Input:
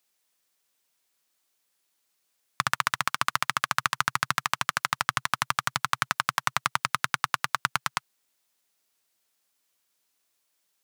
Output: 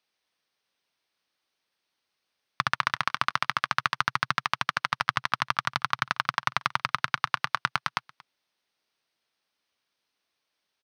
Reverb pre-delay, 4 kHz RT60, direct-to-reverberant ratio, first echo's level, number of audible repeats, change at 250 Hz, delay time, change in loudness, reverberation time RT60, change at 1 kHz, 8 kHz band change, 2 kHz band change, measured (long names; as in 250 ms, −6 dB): no reverb audible, no reverb audible, no reverb audible, −23.5 dB, 1, 0.0 dB, 231 ms, −0.5 dB, no reverb audible, 0.0 dB, −10.5 dB, 0.0 dB